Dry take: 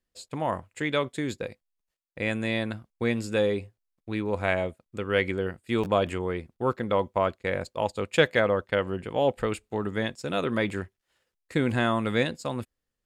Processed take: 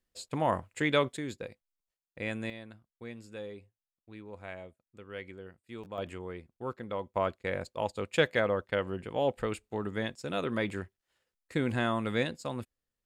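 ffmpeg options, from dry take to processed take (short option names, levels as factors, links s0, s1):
-af "asetnsamples=n=441:p=0,asendcmd='1.17 volume volume -7dB;2.5 volume volume -17.5dB;5.98 volume volume -11dB;7.14 volume volume -5dB',volume=1"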